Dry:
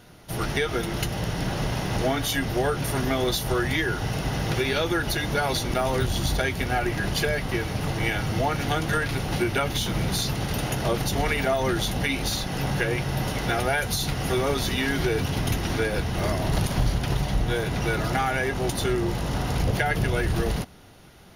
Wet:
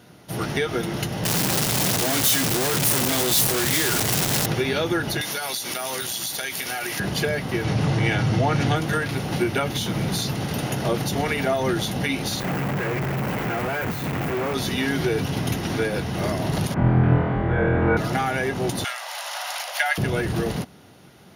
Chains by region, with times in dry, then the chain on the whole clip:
1.25–4.46 s: one-bit comparator + treble shelf 4 kHz +11 dB
5.21–7.00 s: tilt EQ +4.5 dB/octave + compression 12:1, threshold -24 dBFS
7.64–8.76 s: low-pass 8.1 kHz + peaking EQ 120 Hz +7 dB 0.53 oct + level flattener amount 50%
12.40–14.54 s: one-bit comparator + high-order bell 6.6 kHz -13.5 dB 2.3 oct
16.74–17.97 s: low-pass 1.9 kHz 24 dB/octave + flutter echo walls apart 4.1 m, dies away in 1.3 s
18.84–19.98 s: steep high-pass 580 Hz 72 dB/octave + tilt shelf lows -6.5 dB, about 820 Hz
whole clip: high-pass 140 Hz 12 dB/octave; bass shelf 310 Hz +6 dB

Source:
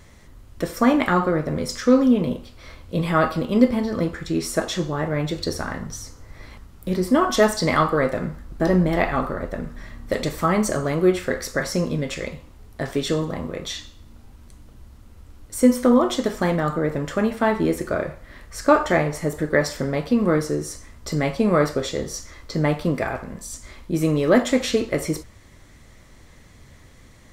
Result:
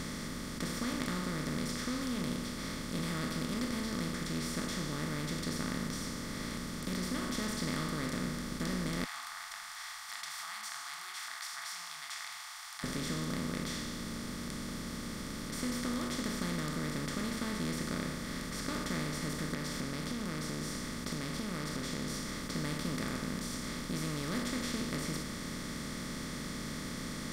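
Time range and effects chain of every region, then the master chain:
9.04–12.84 s: compression 1.5:1, threshold -35 dBFS + brick-wall FIR high-pass 700 Hz
19.54–22.10 s: compression 2.5:1, threshold -32 dBFS + loudspeaker Doppler distortion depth 0.29 ms
whole clip: spectral levelling over time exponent 0.2; amplifier tone stack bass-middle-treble 6-0-2; trim -5 dB

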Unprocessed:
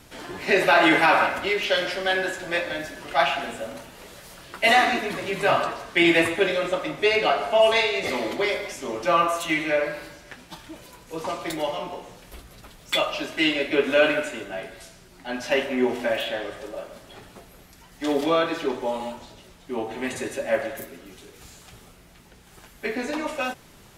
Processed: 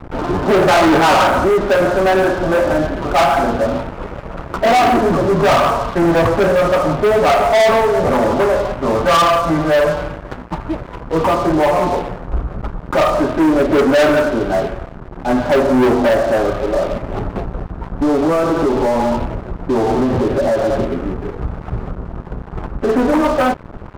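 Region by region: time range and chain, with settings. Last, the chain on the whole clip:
5.54–10.09 s: peaking EQ 340 Hz -8.5 dB 0.52 oct + feedback delay 115 ms, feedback 60%, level -19 dB
16.72–22.89 s: treble shelf 2 kHz -9 dB + compression, threshold -31 dBFS + waveshaping leveller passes 1
whole clip: steep low-pass 1.4 kHz 48 dB/octave; bass shelf 110 Hz +11 dB; waveshaping leveller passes 5

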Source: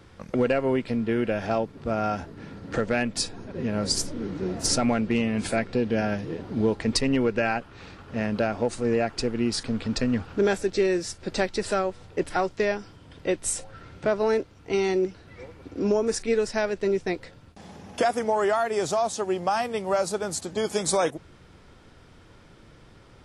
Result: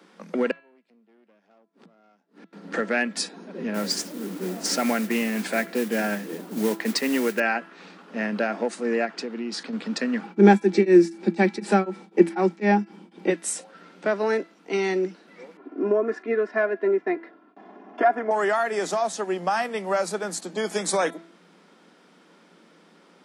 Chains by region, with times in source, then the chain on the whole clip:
0.51–2.53 s: valve stage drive 22 dB, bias 0.75 + inverted gate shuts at -32 dBFS, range -29 dB
3.74–7.40 s: low-pass 8.4 kHz + modulation noise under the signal 15 dB
9.05–9.73 s: low-pass 6.4 kHz + compression 3:1, threshold -26 dBFS
10.23–13.30 s: small resonant body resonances 210/340/810/2300 Hz, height 17 dB, ringing for 75 ms + tremolo of two beating tones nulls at 4 Hz
15.57–18.31 s: Chebyshev low-pass 1.4 kHz + comb 2.9 ms, depth 82%
whole clip: Chebyshev high-pass 170 Hz, order 8; de-hum 333.7 Hz, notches 13; dynamic bell 1.8 kHz, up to +7 dB, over -47 dBFS, Q 2.1

